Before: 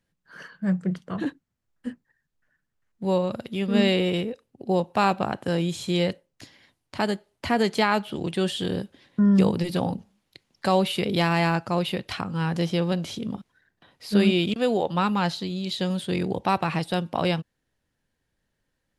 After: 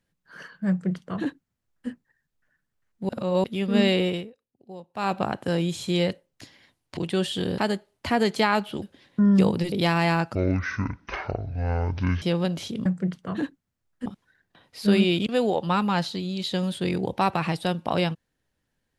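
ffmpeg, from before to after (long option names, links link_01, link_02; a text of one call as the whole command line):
ffmpeg -i in.wav -filter_complex "[0:a]asplit=13[link_01][link_02][link_03][link_04][link_05][link_06][link_07][link_08][link_09][link_10][link_11][link_12][link_13];[link_01]atrim=end=3.092[link_14];[link_02]atrim=start=3.088:end=3.442,asetpts=PTS-STARTPTS,areverse[link_15];[link_03]atrim=start=3.438:end=4.31,asetpts=PTS-STARTPTS,afade=type=out:start_time=0.612:duration=0.26:silence=0.125893[link_16];[link_04]atrim=start=4.31:end=4.93,asetpts=PTS-STARTPTS,volume=-18dB[link_17];[link_05]atrim=start=4.93:end=6.972,asetpts=PTS-STARTPTS,afade=type=in:duration=0.26:silence=0.125893[link_18];[link_06]atrim=start=8.208:end=8.822[link_19];[link_07]atrim=start=6.968:end=8.212[link_20];[link_08]atrim=start=8.818:end=9.722[link_21];[link_09]atrim=start=11.068:end=11.704[link_22];[link_10]atrim=start=11.7:end=12.69,asetpts=PTS-STARTPTS,asetrate=23373,aresample=44100,atrim=end_sample=82375,asetpts=PTS-STARTPTS[link_23];[link_11]atrim=start=12.686:end=13.332[link_24];[link_12]atrim=start=0.688:end=1.892[link_25];[link_13]atrim=start=13.328[link_26];[link_14][link_15]acrossfade=duration=0.004:curve1=hsin:curve2=hsin[link_27];[link_16][link_17][link_18]concat=n=3:v=0:a=1[link_28];[link_27][link_28]acrossfade=duration=0.004:curve1=hsin:curve2=hsin[link_29];[link_29][link_19]acrossfade=duration=0.004:curve1=hsin:curve2=hsin[link_30];[link_30][link_20]acrossfade=duration=0.004:curve1=hsin:curve2=hsin[link_31];[link_31][link_21]acrossfade=duration=0.004:curve1=hsin:curve2=hsin[link_32];[link_32][link_22]acrossfade=duration=0.004:curve1=hsin:curve2=hsin[link_33];[link_33][link_23]acrossfade=duration=0.004:curve1=hsin:curve2=hsin[link_34];[link_34][link_24]acrossfade=duration=0.004:curve1=hsin:curve2=hsin[link_35];[link_35][link_25]acrossfade=duration=0.004:curve1=hsin:curve2=hsin[link_36];[link_36][link_26]acrossfade=duration=0.004:curve1=hsin:curve2=hsin" out.wav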